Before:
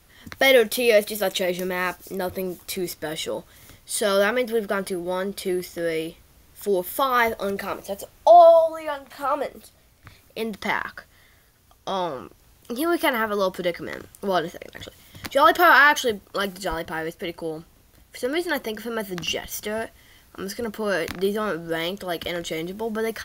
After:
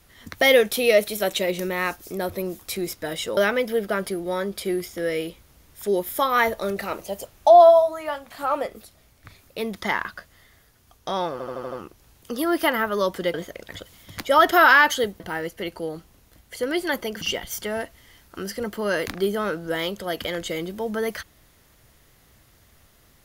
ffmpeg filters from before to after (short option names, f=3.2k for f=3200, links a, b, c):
-filter_complex "[0:a]asplit=10[a][b][c][d][e][f][g][h][i][j];[a]atrim=end=3.372[k];[b]atrim=start=4.168:end=12.202[l];[c]atrim=start=12.118:end=12.202[m];[d]atrim=start=12.118:end=12.202[n];[e]atrim=start=12.118:end=12.202[o];[f]atrim=start=12.118:end=12.202[p];[g]atrim=start=12.118:end=13.742[q];[h]atrim=start=14.398:end=16.262[r];[i]atrim=start=16.818:end=18.832[s];[j]atrim=start=19.218[t];[k][l]acrossfade=d=0.004:c1=hsin:c2=hsin[u];[u][m]acrossfade=d=0.004:c1=hsin:c2=hsin[v];[v][n]acrossfade=d=0.004:c1=hsin:c2=hsin[w];[w][o]acrossfade=d=0.004:c1=hsin:c2=hsin[x];[x][p]acrossfade=d=0.004:c1=hsin:c2=hsin[y];[y][q]acrossfade=d=0.004:c1=hsin:c2=hsin[z];[z][r]acrossfade=d=0.004:c1=hsin:c2=hsin[aa];[aa][s]acrossfade=d=0.004:c1=hsin:c2=hsin[ab];[ab][t]acrossfade=d=0.004:c1=hsin:c2=hsin"